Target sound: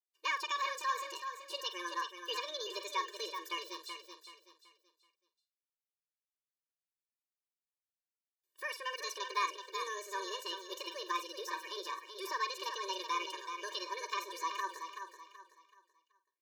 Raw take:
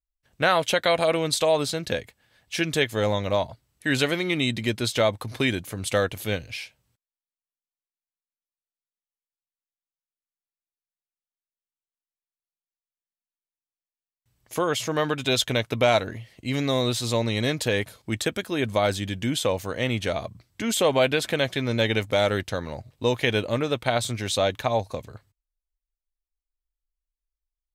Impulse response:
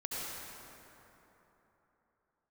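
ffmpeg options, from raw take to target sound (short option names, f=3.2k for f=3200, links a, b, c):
-filter_complex "[0:a]equalizer=f=290:w=0.59:g=-10.5,bandreject=f=390:w=12,asplit=2[a][b];[b]adelay=80,highpass=300,lowpass=3.4k,asoftclip=type=hard:threshold=-16dB,volume=-10dB[c];[a][c]amix=inputs=2:normalize=0,acrossover=split=2500[d][e];[e]acompressor=threshold=-43dB:ratio=6[f];[d][f]amix=inputs=2:normalize=0,asetrate=74529,aresample=44100,asplit=2[g][h];[h]aecho=0:1:379|758|1137|1516:0.422|0.139|0.0459|0.0152[i];[g][i]amix=inputs=2:normalize=0,afftfilt=real='re*eq(mod(floor(b*sr/1024/310),2),1)':imag='im*eq(mod(floor(b*sr/1024/310),2),1)':win_size=1024:overlap=0.75,volume=-6.5dB"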